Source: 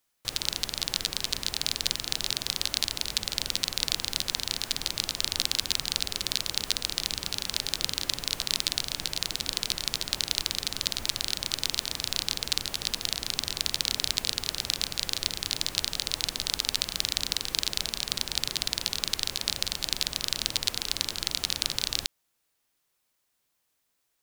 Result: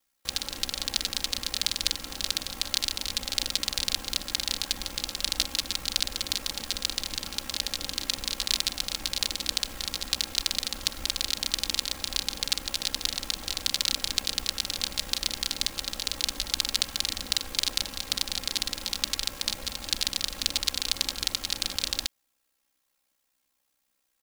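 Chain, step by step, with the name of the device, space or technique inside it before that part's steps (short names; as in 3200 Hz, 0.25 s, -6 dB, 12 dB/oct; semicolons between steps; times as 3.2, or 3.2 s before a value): ring-modulated robot voice (ring modulator 32 Hz; comb 3.7 ms); gain +1.5 dB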